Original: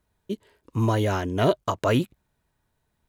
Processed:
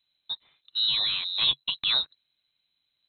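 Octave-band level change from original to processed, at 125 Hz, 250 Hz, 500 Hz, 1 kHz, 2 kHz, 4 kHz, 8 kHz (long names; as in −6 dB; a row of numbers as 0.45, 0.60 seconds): −28.5 dB, below −25 dB, −28.5 dB, −15.5 dB, −2.5 dB, +16.0 dB, below −35 dB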